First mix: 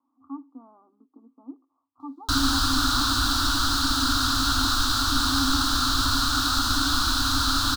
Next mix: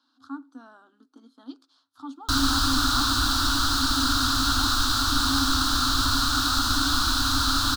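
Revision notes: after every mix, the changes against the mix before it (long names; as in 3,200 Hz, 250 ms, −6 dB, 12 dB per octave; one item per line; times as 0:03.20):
speech: remove Chebyshev low-pass with heavy ripple 1,200 Hz, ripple 3 dB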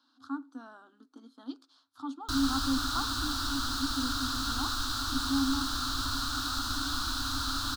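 background −9.5 dB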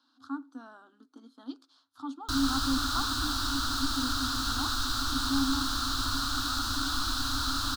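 reverb: on, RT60 0.95 s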